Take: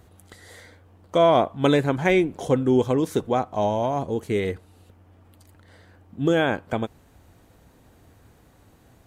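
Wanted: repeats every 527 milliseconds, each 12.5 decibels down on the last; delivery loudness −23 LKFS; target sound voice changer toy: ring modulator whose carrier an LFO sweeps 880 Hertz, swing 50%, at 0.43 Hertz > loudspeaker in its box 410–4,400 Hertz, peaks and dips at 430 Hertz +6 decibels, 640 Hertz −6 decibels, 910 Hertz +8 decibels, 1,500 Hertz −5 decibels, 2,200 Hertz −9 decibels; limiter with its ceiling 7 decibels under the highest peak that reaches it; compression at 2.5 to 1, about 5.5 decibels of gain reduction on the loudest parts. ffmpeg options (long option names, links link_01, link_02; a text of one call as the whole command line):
ffmpeg -i in.wav -af "acompressor=threshold=-22dB:ratio=2.5,alimiter=limit=-17dB:level=0:latency=1,aecho=1:1:527|1054|1581:0.237|0.0569|0.0137,aeval=exprs='val(0)*sin(2*PI*880*n/s+880*0.5/0.43*sin(2*PI*0.43*n/s))':channel_layout=same,highpass=410,equalizer=frequency=430:width_type=q:width=4:gain=6,equalizer=frequency=640:width_type=q:width=4:gain=-6,equalizer=frequency=910:width_type=q:width=4:gain=8,equalizer=frequency=1500:width_type=q:width=4:gain=-5,equalizer=frequency=2200:width_type=q:width=4:gain=-9,lowpass=frequency=4400:width=0.5412,lowpass=frequency=4400:width=1.3066,volume=7.5dB" out.wav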